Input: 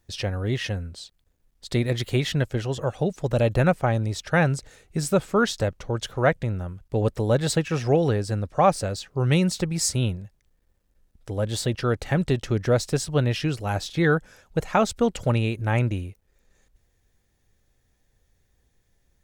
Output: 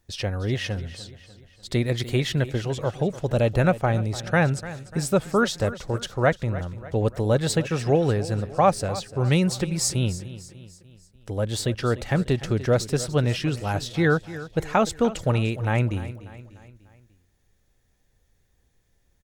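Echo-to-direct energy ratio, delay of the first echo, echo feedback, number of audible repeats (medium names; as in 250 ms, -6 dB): -14.5 dB, 296 ms, 49%, 4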